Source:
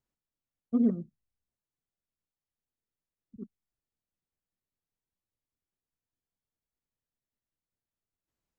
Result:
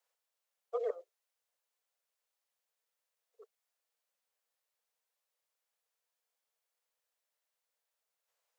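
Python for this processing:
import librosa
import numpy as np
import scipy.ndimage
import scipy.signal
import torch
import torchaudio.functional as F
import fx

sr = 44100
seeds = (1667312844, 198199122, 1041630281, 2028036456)

y = scipy.signal.sosfilt(scipy.signal.butter(16, 450.0, 'highpass', fs=sr, output='sos'), x)
y = F.gain(torch.from_numpy(y), 7.0).numpy()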